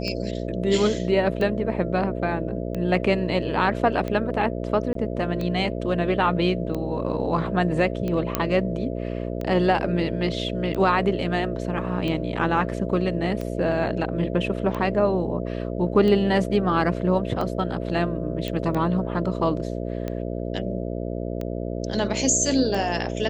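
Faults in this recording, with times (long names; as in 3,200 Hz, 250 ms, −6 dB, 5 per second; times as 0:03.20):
mains buzz 60 Hz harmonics 11 −29 dBFS
scratch tick 45 rpm −17 dBFS
0:04.93–0:04.95: drop-out 23 ms
0:08.35: click −6 dBFS
0:18.48: click −15 dBFS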